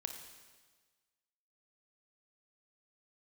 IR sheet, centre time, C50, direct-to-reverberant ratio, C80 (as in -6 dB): 31 ms, 6.0 dB, 5.0 dB, 8.0 dB